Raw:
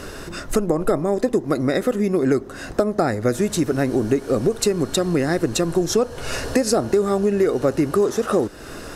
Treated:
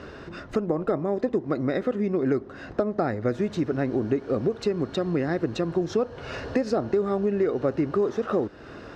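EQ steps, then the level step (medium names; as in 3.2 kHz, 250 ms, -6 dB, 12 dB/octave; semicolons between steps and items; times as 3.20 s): high-pass 58 Hz; distance through air 220 m; -5.0 dB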